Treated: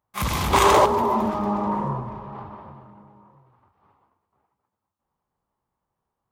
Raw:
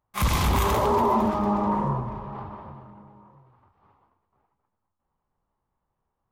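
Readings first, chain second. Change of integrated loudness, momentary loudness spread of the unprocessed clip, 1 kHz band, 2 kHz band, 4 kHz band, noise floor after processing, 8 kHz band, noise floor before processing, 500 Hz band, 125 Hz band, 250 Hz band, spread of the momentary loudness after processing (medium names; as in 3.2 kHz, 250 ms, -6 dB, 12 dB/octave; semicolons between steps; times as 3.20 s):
+3.0 dB, 16 LU, +3.5 dB, +5.0 dB, +5.0 dB, -83 dBFS, no reading, -81 dBFS, +4.0 dB, -2.5 dB, 0.0 dB, 21 LU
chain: time-frequency box 0.53–0.85 s, 290–10000 Hz +9 dB; high-pass 86 Hz 6 dB/octave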